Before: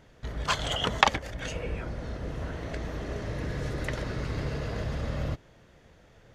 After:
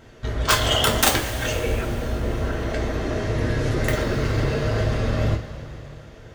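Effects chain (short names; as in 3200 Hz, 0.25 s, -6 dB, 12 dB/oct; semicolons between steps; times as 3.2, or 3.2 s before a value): wow and flutter 27 cents; wrapped overs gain 16.5 dB; two-slope reverb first 0.27 s, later 3.5 s, from -18 dB, DRR -1 dB; gain +6.5 dB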